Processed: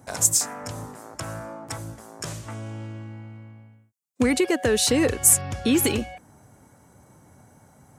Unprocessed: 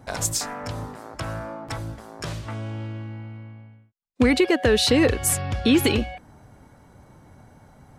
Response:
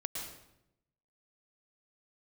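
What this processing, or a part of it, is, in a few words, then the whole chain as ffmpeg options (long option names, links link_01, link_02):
budget condenser microphone: -af "highpass=81,highshelf=frequency=5400:width_type=q:width=1.5:gain=8,volume=-2.5dB"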